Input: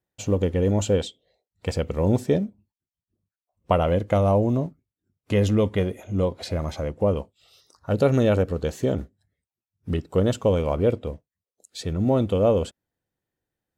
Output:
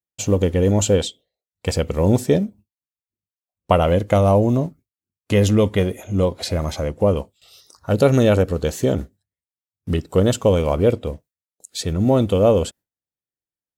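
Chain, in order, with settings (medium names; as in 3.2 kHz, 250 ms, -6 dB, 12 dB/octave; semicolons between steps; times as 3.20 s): gate with hold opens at -51 dBFS; treble shelf 5 kHz +8.5 dB; trim +4.5 dB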